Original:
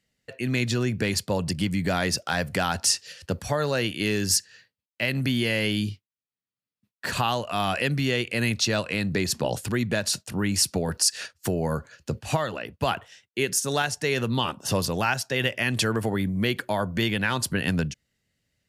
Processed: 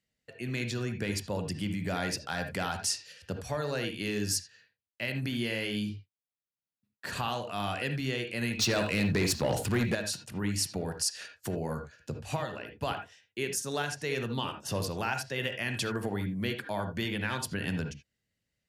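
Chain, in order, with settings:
0:00.99–0:01.93: notch filter 4,300 Hz, Q 13
convolution reverb, pre-delay 3 ms, DRR 5.5 dB
0:08.59–0:09.95: leveller curve on the samples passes 2
level −8.5 dB

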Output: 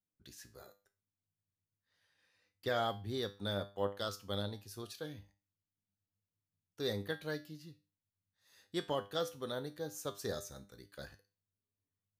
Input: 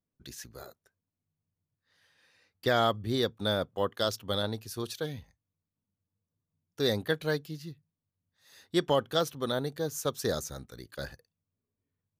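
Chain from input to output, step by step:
tuned comb filter 100 Hz, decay 0.33 s, harmonics all, mix 70%
level −2.5 dB

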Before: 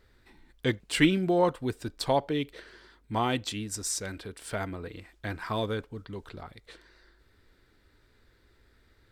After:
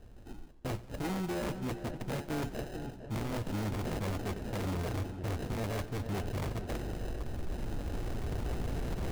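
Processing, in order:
camcorder AGC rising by 6.9 dB per second
high-shelf EQ 2,300 Hz −6 dB
decimation without filtering 39×
tuned comb filter 120 Hz, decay 0.2 s, harmonics all, mix 40%
reversed playback
downward compressor 16 to 1, threshold −40 dBFS, peak gain reduction 20 dB
reversed playback
low-shelf EQ 320 Hz +6.5 dB
notch filter 2,000 Hz, Q 14
in parallel at −12 dB: comparator with hysteresis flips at −42.5 dBFS
on the sum: feedback echo with a low-pass in the loop 454 ms, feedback 54%, low-pass 1,900 Hz, level −12.5 dB
wave folding −36.5 dBFS
feedback echo with a swinging delay time 89 ms, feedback 70%, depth 123 cents, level −18.5 dB
level +7 dB

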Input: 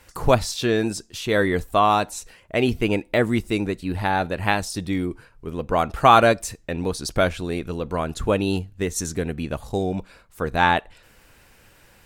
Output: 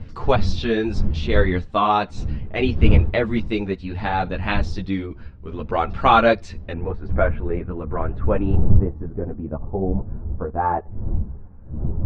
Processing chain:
wind on the microphone 87 Hz −22 dBFS
low-pass filter 4,600 Hz 24 dB per octave, from 0:06.72 1,900 Hz, from 0:08.55 1,100 Hz
string-ensemble chorus
level +2 dB

